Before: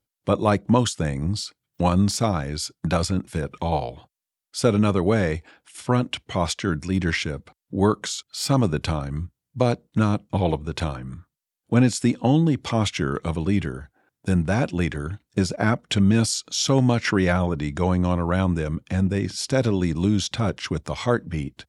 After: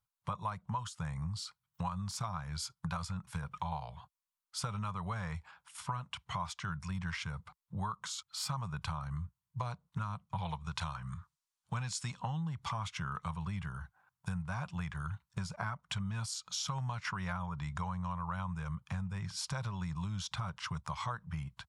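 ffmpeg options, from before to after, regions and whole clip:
-filter_complex "[0:a]asettb=1/sr,asplit=3[a][b][c];[a]atrim=end=10.384[d];[b]atrim=start=10.38:end=12.2,asetpts=PTS-STARTPTS,afade=t=in:d=0.004:c=qsin,afade=t=out:st=1.816:d=0.004:c=qsin,lowpass=7.9k,highshelf=f=2.6k:g=10.5[e];[c]atrim=start=12.196[f];[d][e]acrossfade=d=0.004:c1=hsin:c2=qsin[g];[g][f]acrossfade=d=0.004:c1=qsin:c2=hsin,firequalizer=gain_entry='entry(170,0);entry(270,-26);entry(1000,9);entry(1800,-3)':delay=0.05:min_phase=1,acompressor=threshold=-30dB:ratio=6,volume=-5dB"

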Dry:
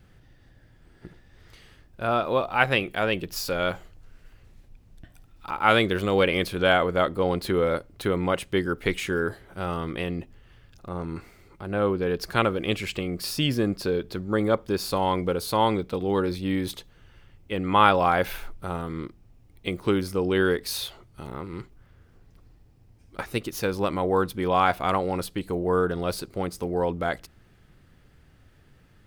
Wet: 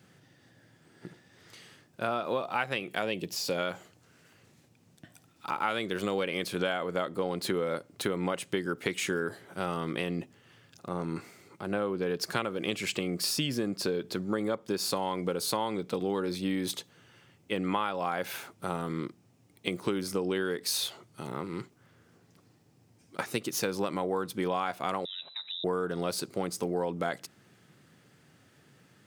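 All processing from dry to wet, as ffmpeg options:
-filter_complex "[0:a]asettb=1/sr,asplit=3[a][b][c];[a]atrim=end=3.024[d];[b]atrim=start=3.02:end=3.58,asetpts=PTS-STARTPTS,afade=t=in:d=0.004:c=qsin,afade=t=out:st=0.556:d=0.004:c=qsin,acrossover=split=4300[e][f];[f]acompressor=threshold=-39dB:ratio=4:attack=1:release=60[g];[e][g]amix=inputs=2:normalize=0,equalizer=f=1.4k:t=o:w=0.72:g=-9.5[h];[c]atrim=start=3.576[i];[d][h]acrossfade=d=0.004:c1=hsin:c2=qsin[j];[j][i]acrossfade=d=0.004:c1=qsin:c2=hsin,asettb=1/sr,asplit=3[k][l][m];[k]atrim=end=25.054[n];[l]atrim=start=25.05:end=25.64,asetpts=PTS-STARTPTS,afade=t=in:d=0.004:c=qsin,afade=t=out:st=0.586:d=0.004:c=qsin,acompressor=threshold=-39dB:ratio=4:attack=3.2:release=140:knee=1:detection=peak,lowpass=f=3.4k:t=q:w=0.5098,lowpass=f=3.4k:t=q:w=0.6013,lowpass=f=3.4k:t=q:w=0.9,lowpass=f=3.4k:t=q:w=2.563,afreqshift=-4000[o];[m]atrim=start=25.636[p];[n][o]acrossfade=d=0.004:c1=hsin:c2=qsin[q];[q][p]acrossfade=d=0.004:c1=qsin:c2=hsin,highpass=f=130:w=0.5412,highpass=f=130:w=1.3066,equalizer=f=7.2k:w=0.99:g=6.5,acompressor=threshold=-26dB:ratio=12"

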